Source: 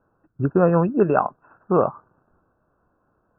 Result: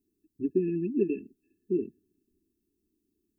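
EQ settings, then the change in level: brick-wall FIR band-stop 440–1700 Hz; tilt +2.5 dB/oct; fixed phaser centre 510 Hz, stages 6; 0.0 dB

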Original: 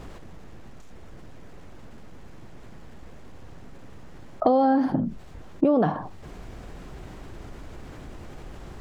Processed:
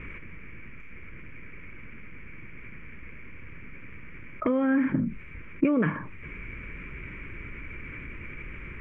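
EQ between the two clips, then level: synth low-pass 2300 Hz, resonance Q 13; fixed phaser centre 1800 Hz, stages 4; 0.0 dB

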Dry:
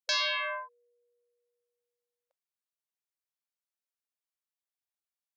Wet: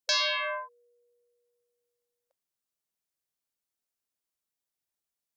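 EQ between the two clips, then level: tone controls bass -5 dB, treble +5 dB; low shelf 440 Hz +11.5 dB; 0.0 dB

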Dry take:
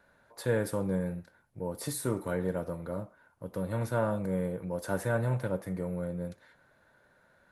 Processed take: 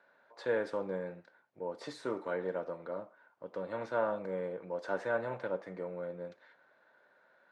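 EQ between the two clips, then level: BPF 390–7700 Hz; air absorption 150 m; 0.0 dB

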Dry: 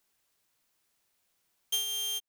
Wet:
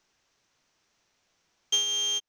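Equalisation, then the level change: air absorption 170 m; bell 6000 Hz +9.5 dB 0.46 oct; high shelf 9300 Hz +5.5 dB; +8.5 dB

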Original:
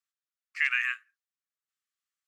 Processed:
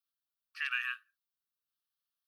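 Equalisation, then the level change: high shelf 4800 Hz +9 dB; fixed phaser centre 2100 Hz, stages 6; -2.5 dB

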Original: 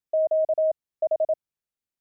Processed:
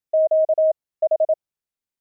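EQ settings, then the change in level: dynamic EQ 620 Hz, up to +5 dB, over -34 dBFS, Q 1.4; 0.0 dB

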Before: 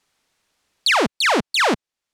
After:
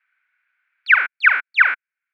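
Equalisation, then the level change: resonant high-pass 1500 Hz, resonance Q 12; synth low-pass 2300 Hz, resonance Q 6.9; tilt -2.5 dB/oct; -11.5 dB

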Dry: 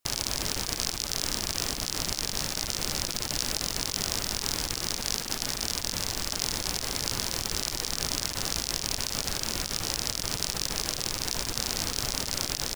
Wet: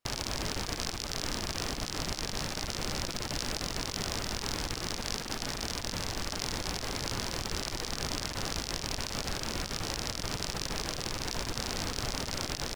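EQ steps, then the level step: LPF 2800 Hz 6 dB/oct; 0.0 dB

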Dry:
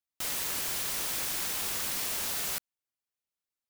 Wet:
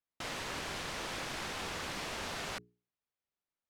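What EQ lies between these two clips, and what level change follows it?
tape spacing loss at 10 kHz 22 dB; notches 60/120/180/240/300/360/420 Hz; +3.5 dB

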